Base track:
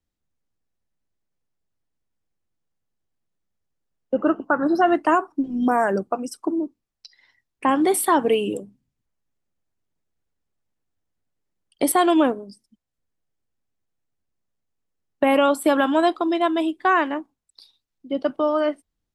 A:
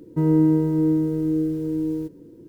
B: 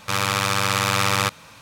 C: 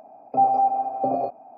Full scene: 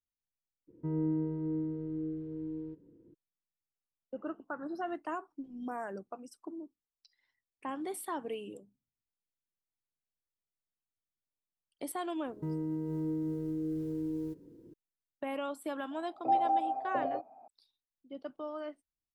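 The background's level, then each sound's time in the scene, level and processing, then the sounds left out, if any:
base track −19.5 dB
0:00.67: mix in A −14 dB, fades 0.02 s + high-frequency loss of the air 390 metres
0:12.26: mix in A −9.5 dB + brickwall limiter −19.5 dBFS
0:15.91: mix in C −8 dB + low-shelf EQ 400 Hz −6 dB
not used: B

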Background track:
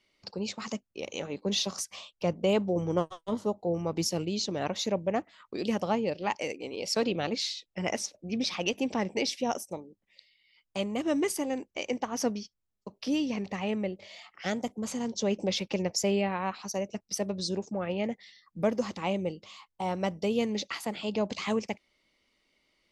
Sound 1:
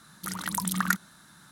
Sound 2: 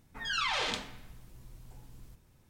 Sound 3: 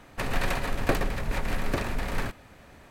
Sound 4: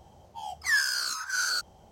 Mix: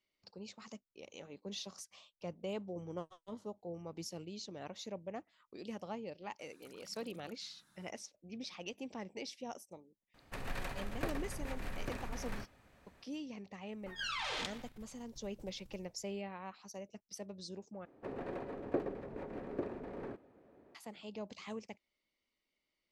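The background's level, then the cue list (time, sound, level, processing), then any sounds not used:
background track −15 dB
0:06.39: mix in 1 −16 dB + downward compressor, threshold −42 dBFS
0:10.14: mix in 3 −13.5 dB
0:13.71: mix in 2 −3 dB + output level in coarse steps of 12 dB
0:17.85: overwrite with 3 −3.5 dB + resonant band-pass 380 Hz, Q 1.9
not used: 4

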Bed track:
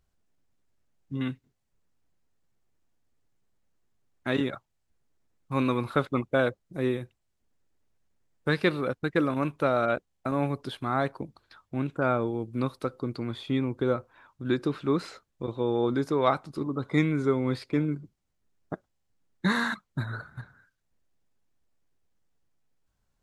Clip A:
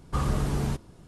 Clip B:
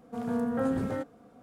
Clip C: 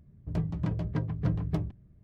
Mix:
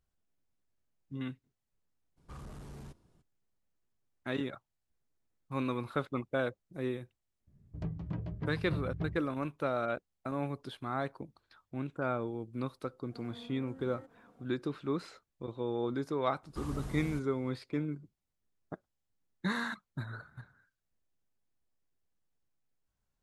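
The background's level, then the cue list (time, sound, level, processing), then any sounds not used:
bed track −8 dB
0:02.16: mix in A −17 dB, fades 0.02 s + soft clipping −25 dBFS
0:07.47: mix in C −7.5 dB + treble cut that deepens with the level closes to 2,800 Hz, closed at −24 dBFS
0:13.03: mix in B −7 dB + downward compressor 5 to 1, threshold −42 dBFS
0:16.43: mix in A −14 dB + high-shelf EQ 7,000 Hz +4 dB

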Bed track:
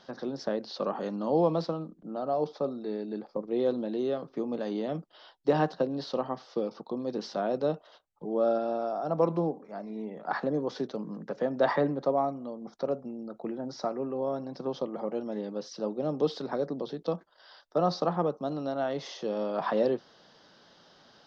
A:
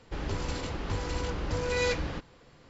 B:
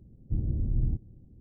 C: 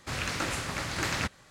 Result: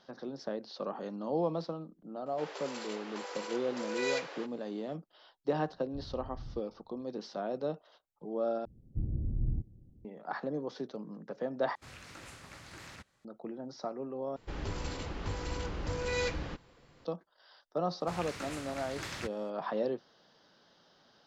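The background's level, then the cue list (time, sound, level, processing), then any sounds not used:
bed track −6.5 dB
0:02.26: mix in A −4.5 dB + Butterworth high-pass 430 Hz
0:05.63: mix in B −18 dB
0:08.65: overwrite with B −5 dB
0:11.75: overwrite with C −17 dB + brickwall limiter −20.5 dBFS
0:14.36: overwrite with A −4.5 dB
0:18.00: mix in C −11 dB

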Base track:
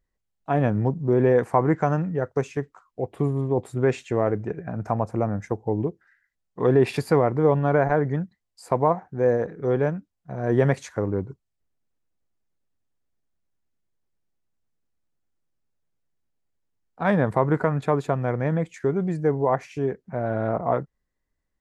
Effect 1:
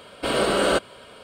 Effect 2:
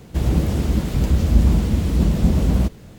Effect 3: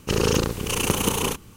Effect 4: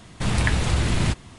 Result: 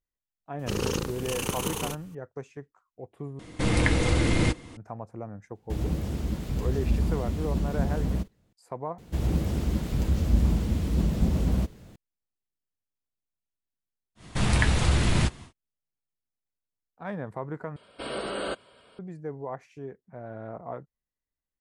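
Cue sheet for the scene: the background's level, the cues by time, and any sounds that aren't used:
base track −14 dB
0:00.59: mix in 3 −8 dB
0:03.39: overwrite with 4 −3 dB + hollow resonant body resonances 310/480/2,100 Hz, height 13 dB, ringing for 60 ms
0:05.55: mix in 2 −10.5 dB + noise gate −33 dBFS, range −15 dB
0:08.98: overwrite with 2 −7.5 dB
0:14.15: mix in 4 −1.5 dB, fades 0.10 s + double-tracking delay 14 ms −14 dB
0:17.76: overwrite with 1 −11.5 dB + gate on every frequency bin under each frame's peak −30 dB strong

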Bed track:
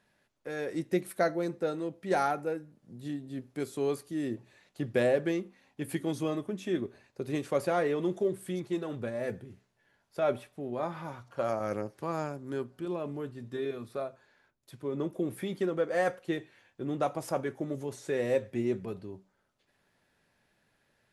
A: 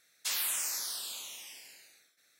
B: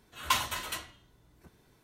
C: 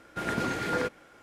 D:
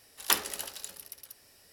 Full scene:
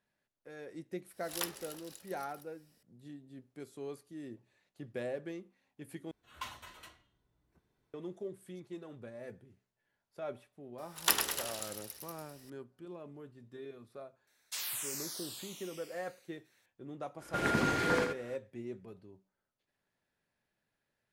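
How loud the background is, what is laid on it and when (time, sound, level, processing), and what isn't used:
bed track −12.5 dB
0:01.11: mix in D −12.5 dB + background raised ahead of every attack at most 140 dB per second
0:06.11: overwrite with B −14.5 dB + high-shelf EQ 4,700 Hz −7 dB
0:10.78: mix in D −2.5 dB + feedback echo with a swinging delay time 101 ms, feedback 55%, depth 115 cents, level −6 dB
0:14.27: mix in A −6 dB
0:17.17: mix in C −1 dB, fades 0.05 s + single-tap delay 81 ms −6.5 dB

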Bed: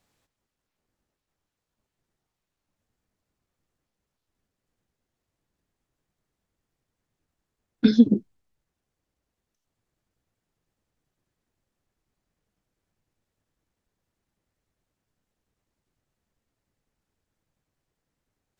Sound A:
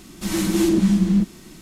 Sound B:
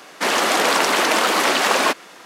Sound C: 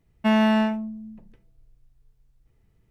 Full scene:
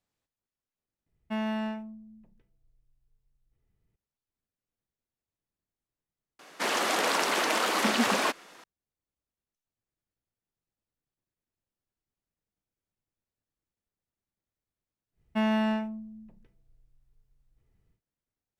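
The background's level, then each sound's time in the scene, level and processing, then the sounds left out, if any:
bed −13 dB
0:01.06: overwrite with C −12 dB
0:06.39: mix in B −9.5 dB
0:15.11: mix in C −7 dB, fades 0.10 s
not used: A

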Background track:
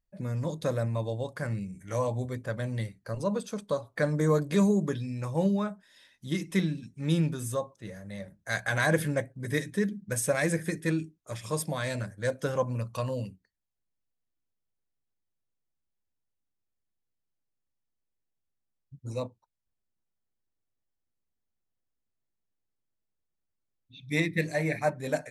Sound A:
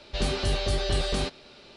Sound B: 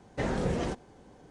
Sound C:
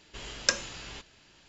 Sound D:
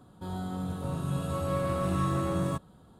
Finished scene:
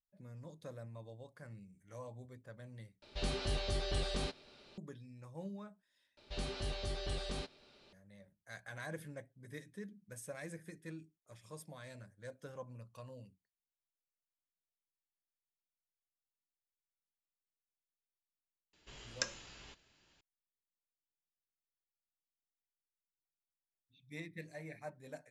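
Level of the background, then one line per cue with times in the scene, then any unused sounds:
background track −19.5 dB
0:03.02: overwrite with A −10 dB
0:06.17: overwrite with A −13.5 dB
0:18.73: mix in C −12 dB
not used: B, D

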